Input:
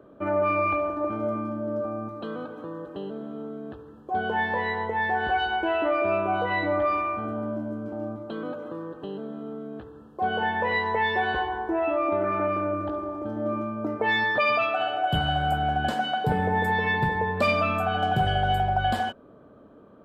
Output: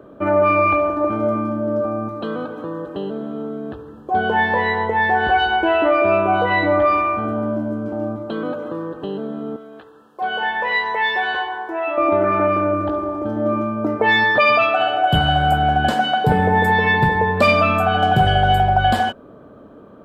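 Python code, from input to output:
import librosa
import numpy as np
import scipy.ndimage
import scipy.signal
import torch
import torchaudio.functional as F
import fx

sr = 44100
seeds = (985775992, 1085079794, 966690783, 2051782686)

y = fx.highpass(x, sr, hz=1200.0, slope=6, at=(9.56, 11.98))
y = y * 10.0 ** (8.5 / 20.0)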